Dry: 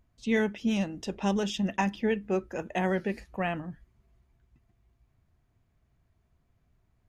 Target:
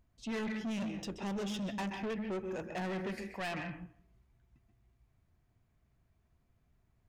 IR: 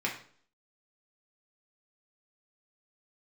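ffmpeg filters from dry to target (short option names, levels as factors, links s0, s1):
-filter_complex "[0:a]asettb=1/sr,asplit=3[s0][s1][s2];[s0]atrim=end=3.114[s3];[s1]atrim=start=3.11:end=3.55,asetpts=PTS-STARTPTS,afade=t=in:d=0.004:c=qsin,afade=t=out:st=0.436:d=0.004:c=qsin,tiltshelf=f=630:g=-6.5[s4];[s2]atrim=start=3.546[s5];[s3][s4]acrossfade=d=0.004:c1=hsin:c2=qsin[s6];[s6][s5]acrossfade=d=0.004:c1=qsin:c2=hsin,asplit=2[s7][s8];[1:a]atrim=start_sample=2205,adelay=128[s9];[s8][s9]afir=irnorm=-1:irlink=0,volume=0.178[s10];[s7][s10]amix=inputs=2:normalize=0,asoftclip=type=tanh:threshold=0.0282,volume=0.708"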